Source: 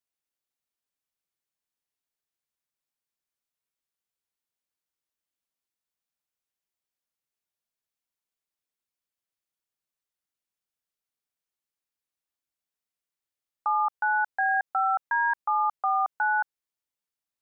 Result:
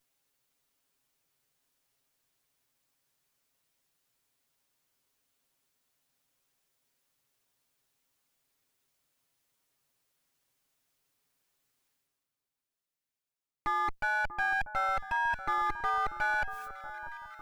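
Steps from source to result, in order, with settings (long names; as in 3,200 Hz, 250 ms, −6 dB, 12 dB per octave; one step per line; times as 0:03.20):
lower of the sound and its delayed copy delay 7.4 ms
noise gate −54 dBFS, range −52 dB
low-shelf EQ 410 Hz +3.5 dB
reversed playback
upward compression, threshold −38 dBFS
reversed playback
brickwall limiter −27 dBFS, peak gain reduction 10 dB
on a send: delay that swaps between a low-pass and a high-pass 639 ms, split 1,400 Hz, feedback 77%, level −12 dB
on the sum: level +4.5 dB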